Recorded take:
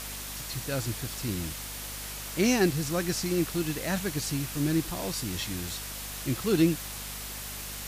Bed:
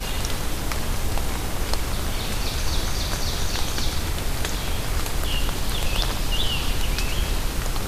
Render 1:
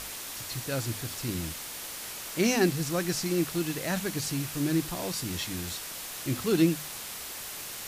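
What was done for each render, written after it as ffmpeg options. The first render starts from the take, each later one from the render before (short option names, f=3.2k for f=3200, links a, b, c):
-af "bandreject=f=50:t=h:w=6,bandreject=f=100:t=h:w=6,bandreject=f=150:t=h:w=6,bandreject=f=200:t=h:w=6,bandreject=f=250:t=h:w=6"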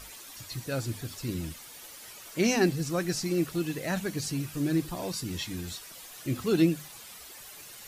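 -af "afftdn=nr=11:nf=-40"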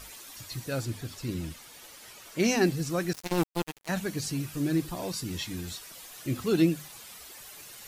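-filter_complex "[0:a]asettb=1/sr,asplit=3[a][b][c];[a]atrim=end=0.854[d];[b]atrim=start=0.85:end=2.4,asetpts=PTS-STARTPTS,afade=t=in:d=0.004:c=qsin,afade=t=out:st=1.546:d=0.004:c=qsin,highshelf=f=7.5k:g=-5.5[e];[c]atrim=start=2.396[f];[d][e]acrossfade=d=0.004:c1=hsin:c2=qsin[g];[g][f]acrossfade=d=0.004:c1=qsin:c2=hsin,asettb=1/sr,asplit=3[h][i][j];[h]atrim=end=3.134[k];[i]atrim=start=3.13:end=3.89,asetpts=PTS-STARTPTS,afade=t=in:d=0.004:c=qsin,afade=t=out:st=0.756:d=0.004:c=qsin,acrusher=bits=3:mix=0:aa=0.5[l];[j]atrim=start=3.886[m];[k][l]acrossfade=d=0.004:c1=hsin:c2=qsin[n];[n][m]acrossfade=d=0.004:c1=qsin:c2=hsin"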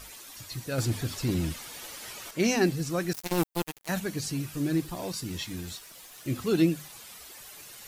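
-filter_complex "[0:a]asettb=1/sr,asplit=3[a][b][c];[a]atrim=end=0.784[d];[b]atrim=start=0.78:end=2.31,asetpts=PTS-STARTPTS,afade=t=in:d=0.004:c=qsin,afade=t=out:st=1.526:d=0.004:c=qsin,aeval=exprs='0.0944*sin(PI/2*1.41*val(0)/0.0944)':c=same[e];[c]atrim=start=2.306[f];[d][e]acrossfade=d=0.004:c1=hsin:c2=qsin[g];[g][f]acrossfade=d=0.004:c1=qsin:c2=hsin,asettb=1/sr,asplit=3[h][i][j];[h]atrim=end=3.114[k];[i]atrim=start=3.11:end=4,asetpts=PTS-STARTPTS,afade=t=in:d=0.004:c=qsin,afade=t=out:st=0.886:d=0.004:c=qsin,highshelf=f=10k:g=9[l];[j]atrim=start=3.996[m];[k][l]acrossfade=d=0.004:c1=hsin:c2=qsin[n];[n][m]acrossfade=d=0.004:c1=qsin:c2=hsin,asettb=1/sr,asplit=3[o][p][q];[o]atrim=end=4.634[r];[p]atrim=start=4.63:end=6.3,asetpts=PTS-STARTPTS,afade=t=in:d=0.004:c=qsin,afade=t=out:st=1.666:d=0.004:c=qsin,aeval=exprs='sgn(val(0))*max(abs(val(0))-0.0015,0)':c=same[s];[q]atrim=start=6.296[t];[r][s]acrossfade=d=0.004:c1=hsin:c2=qsin[u];[u][t]acrossfade=d=0.004:c1=qsin:c2=hsin"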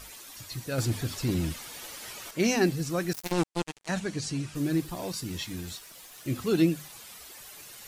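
-filter_complex "[0:a]asplit=3[a][b][c];[a]afade=t=out:st=3.31:d=0.02[d];[b]lowpass=f=8.8k:w=0.5412,lowpass=f=8.8k:w=1.3066,afade=t=in:st=3.31:d=0.02,afade=t=out:st=4.54:d=0.02[e];[c]afade=t=in:st=4.54:d=0.02[f];[d][e][f]amix=inputs=3:normalize=0"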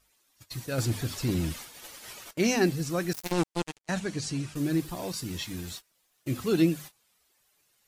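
-af "agate=range=-23dB:threshold=-41dB:ratio=16:detection=peak"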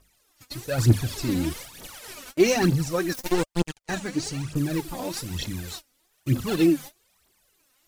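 -filter_complex "[0:a]asplit=2[a][b];[b]acrusher=samples=24:mix=1:aa=0.000001:lfo=1:lforange=38.4:lforate=1.9,volume=-9.5dB[c];[a][c]amix=inputs=2:normalize=0,aphaser=in_gain=1:out_gain=1:delay=4.1:decay=0.68:speed=1.1:type=triangular"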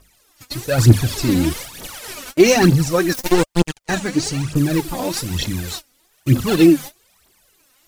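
-af "volume=8.5dB,alimiter=limit=-1dB:level=0:latency=1"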